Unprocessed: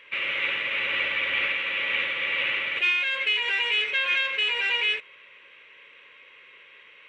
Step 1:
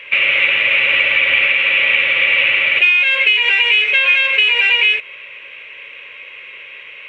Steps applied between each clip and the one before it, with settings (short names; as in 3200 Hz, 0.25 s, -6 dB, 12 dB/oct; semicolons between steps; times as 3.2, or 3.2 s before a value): fifteen-band EQ 100 Hz +9 dB, 630 Hz +7 dB, 2500 Hz +10 dB; compressor 4:1, threshold -19 dBFS, peak gain reduction 8 dB; gain +8.5 dB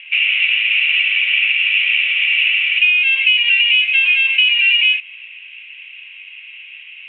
band-pass 2800 Hz, Q 5.3; gain +3 dB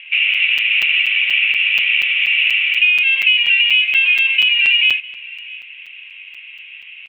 echo 0.652 s -21.5 dB; crackling interface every 0.24 s, samples 256, zero, from 0.34